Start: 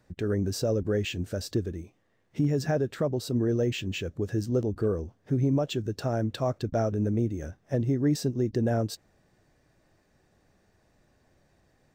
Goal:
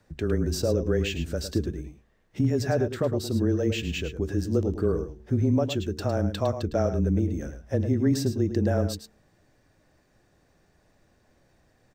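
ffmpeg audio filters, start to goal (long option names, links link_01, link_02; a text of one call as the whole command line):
ffmpeg -i in.wav -filter_complex "[0:a]bandreject=frequency=78.57:width_type=h:width=4,bandreject=frequency=157.14:width_type=h:width=4,bandreject=frequency=235.71:width_type=h:width=4,bandreject=frequency=314.28:width_type=h:width=4,bandreject=frequency=392.85:width_type=h:width=4,bandreject=frequency=471.42:width_type=h:width=4,afreqshift=-20,asplit=2[link_01][link_02];[link_02]aecho=0:1:107:0.316[link_03];[link_01][link_03]amix=inputs=2:normalize=0,volume=2dB" out.wav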